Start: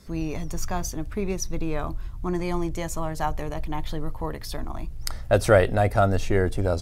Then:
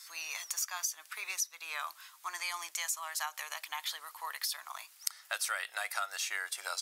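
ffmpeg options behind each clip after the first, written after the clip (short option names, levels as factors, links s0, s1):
-af "highpass=f=1100:w=0.5412,highpass=f=1100:w=1.3066,highshelf=f=3100:g=11,acompressor=threshold=0.0251:ratio=6"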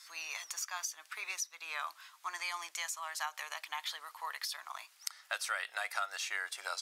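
-af "highshelf=f=8200:g=-12"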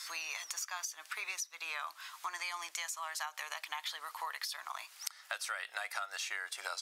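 -af "acompressor=threshold=0.00282:ratio=3,volume=3.35"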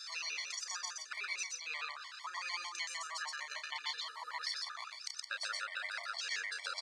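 -af "highpass=110,equalizer=f=310:t=q:w=4:g=-4,equalizer=f=760:t=q:w=4:g=-8,equalizer=f=2100:t=q:w=4:g=3,equalizer=f=4400:t=q:w=4:g=9,lowpass=f=7800:w=0.5412,lowpass=f=7800:w=1.3066,aecho=1:1:32.07|122.4|169.1:0.501|0.891|0.355,afftfilt=real='re*gt(sin(2*PI*6.6*pts/sr)*(1-2*mod(floor(b*sr/1024/590),2)),0)':imag='im*gt(sin(2*PI*6.6*pts/sr)*(1-2*mod(floor(b*sr/1024/590),2)),0)':win_size=1024:overlap=0.75,volume=0.794"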